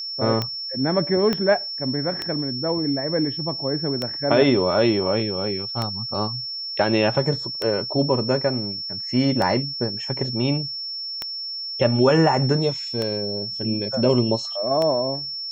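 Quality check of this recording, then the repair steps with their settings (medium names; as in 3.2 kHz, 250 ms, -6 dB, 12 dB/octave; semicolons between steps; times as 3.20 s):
tick 33 1/3 rpm -11 dBFS
whine 5.4 kHz -28 dBFS
1.33 s: pop -10 dBFS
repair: de-click; band-stop 5.4 kHz, Q 30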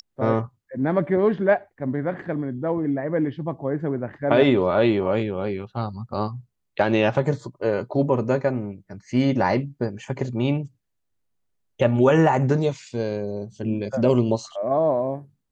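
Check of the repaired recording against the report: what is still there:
1.33 s: pop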